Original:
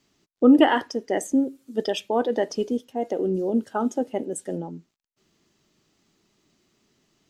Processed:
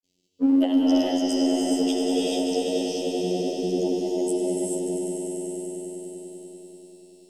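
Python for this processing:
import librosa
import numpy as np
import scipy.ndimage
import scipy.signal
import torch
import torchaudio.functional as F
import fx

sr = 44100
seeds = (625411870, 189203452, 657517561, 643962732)

p1 = scipy.signal.sosfilt(scipy.signal.cheby1(2, 1.0, [580.0, 3000.0], 'bandstop', fs=sr, output='sos'), x)
p2 = fx.high_shelf(p1, sr, hz=6300.0, db=7.5)
p3 = np.clip(10.0 ** (15.0 / 20.0) * p2, -1.0, 1.0) / 10.0 ** (15.0 / 20.0)
p4 = p2 + (p3 * 10.0 ** (-6.5 / 20.0))
p5 = fx.granulator(p4, sr, seeds[0], grain_ms=100.0, per_s=20.0, spray_ms=100.0, spread_st=0)
p6 = fx.robotise(p5, sr, hz=90.4)
p7 = p6 + fx.echo_swell(p6, sr, ms=97, loudest=5, wet_db=-9.5, dry=0)
p8 = fx.rev_gated(p7, sr, seeds[1], gate_ms=470, shape='rising', drr_db=-5.0)
y = p8 * 10.0 ** (-6.0 / 20.0)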